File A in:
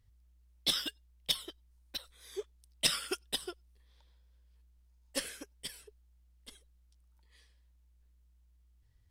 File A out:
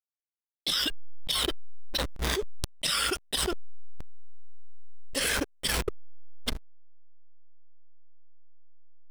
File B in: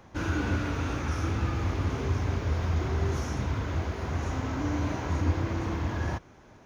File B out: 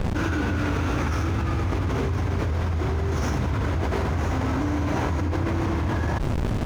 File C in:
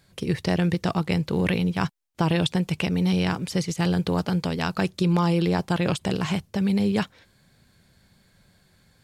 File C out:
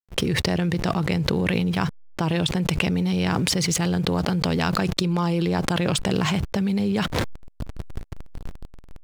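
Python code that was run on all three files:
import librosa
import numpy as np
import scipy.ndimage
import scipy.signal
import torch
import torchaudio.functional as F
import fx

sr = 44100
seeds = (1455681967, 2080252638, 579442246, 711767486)

y = fx.backlash(x, sr, play_db=-44.0)
y = fx.env_flatten(y, sr, amount_pct=100)
y = y * 10.0 ** (-3.0 / 20.0)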